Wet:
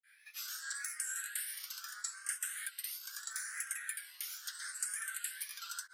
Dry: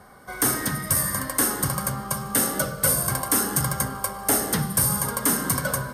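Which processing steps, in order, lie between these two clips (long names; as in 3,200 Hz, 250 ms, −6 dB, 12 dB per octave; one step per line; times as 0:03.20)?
granular cloud 238 ms, grains 9.2 per second, pitch spread up and down by 3 semitones
Chebyshev high-pass filter 1,500 Hz, order 5
downward compressor, threshold −30 dBFS, peak gain reduction 9.5 dB
Bessel low-pass filter 10,000 Hz, order 2
frequency shifter mixed with the dry sound +0.77 Hz
level −1 dB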